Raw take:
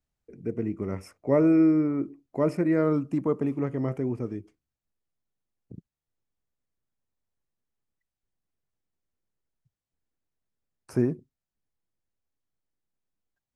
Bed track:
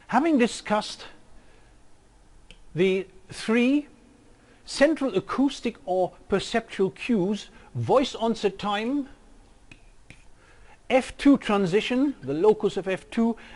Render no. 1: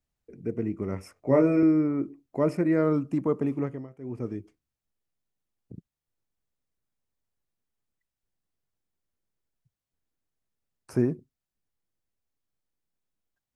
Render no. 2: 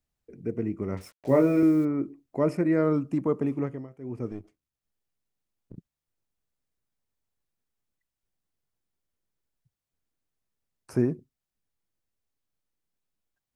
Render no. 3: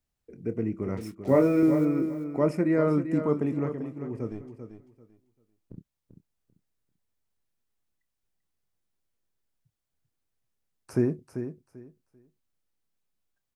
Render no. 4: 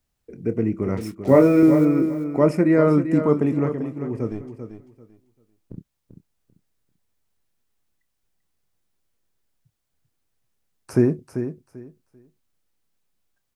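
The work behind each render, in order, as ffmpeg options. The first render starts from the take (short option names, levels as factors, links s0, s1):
-filter_complex "[0:a]asettb=1/sr,asplit=3[s0][s1][s2];[s0]atrim=end=1.144[s3];[s1]atrim=start=1.14:end=1.63,asetpts=PTS-STARTPTS,afade=t=in:d=0.004:c=qsin,afade=t=out:st=0.486:d=0.004:c=qsin,asplit=2[s4][s5];[s5]adelay=23,volume=0.631[s6];[s4][s6]amix=inputs=2:normalize=0,atrim=end_sample=21609[s7];[s2]atrim=start=1.626[s8];[s3][s7]acrossfade=d=0.004:c1=hsin:c2=qsin[s9];[s9][s8]acrossfade=d=0.004:c1=qsin:c2=hsin,asplit=3[s10][s11][s12];[s10]atrim=end=3.88,asetpts=PTS-STARTPTS,afade=t=out:st=3.6:d=0.28:silence=0.112202[s13];[s11]atrim=start=3.88:end=3.98,asetpts=PTS-STARTPTS,volume=0.112[s14];[s12]atrim=start=3.98,asetpts=PTS-STARTPTS,afade=t=in:d=0.28:silence=0.112202[s15];[s13][s14][s15]concat=n=3:v=0:a=1"
-filter_complex "[0:a]asettb=1/sr,asplit=3[s0][s1][s2];[s0]atrim=end=0.974[s3];[s1]atrim=start=0.97:end=1.85,asetpts=PTS-STARTPTS,afade=t=in:d=0.004:c=qsin,afade=t=out:st=0.876:d=0.004:c=qsin,acrusher=bits=7:mix=0:aa=0.5[s4];[s2]atrim=start=1.846[s5];[s3][s4]acrossfade=d=0.004:c1=hsin:c2=qsin[s6];[s6][s5]acrossfade=d=0.004:c1=qsin:c2=hsin,asettb=1/sr,asplit=3[s7][s8][s9];[s7]atrim=end=4.314[s10];[s8]atrim=start=4.31:end=5.77,asetpts=PTS-STARTPTS,afade=t=in:d=0.004:c=qsin,afade=t=out:st=1.456:d=0.004:c=qsin,aeval=exprs='if(lt(val(0),0),0.447*val(0),val(0))':c=same[s11];[s9]atrim=start=5.766[s12];[s10][s11]acrossfade=d=0.004:c1=hsin:c2=qsin[s13];[s13][s12]acrossfade=d=0.004:c1=qsin:c2=hsin"
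-filter_complex "[0:a]asplit=2[s0][s1];[s1]adelay=27,volume=0.211[s2];[s0][s2]amix=inputs=2:normalize=0,aecho=1:1:391|782|1173:0.335|0.0703|0.0148"
-af "volume=2.24"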